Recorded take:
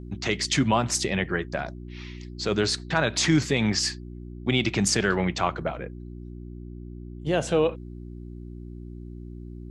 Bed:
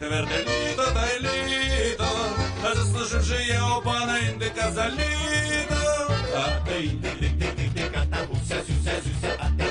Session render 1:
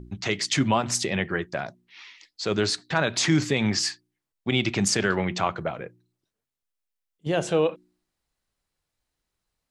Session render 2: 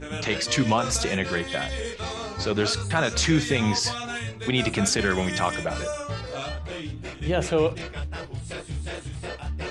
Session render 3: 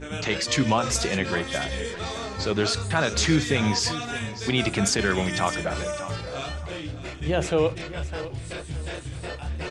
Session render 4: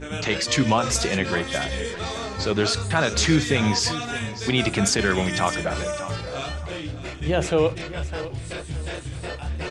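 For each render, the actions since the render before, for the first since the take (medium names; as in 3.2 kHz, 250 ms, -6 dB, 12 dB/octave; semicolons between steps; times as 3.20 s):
de-hum 60 Hz, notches 6
add bed -7.5 dB
feedback delay 608 ms, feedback 27%, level -14 dB
trim +2 dB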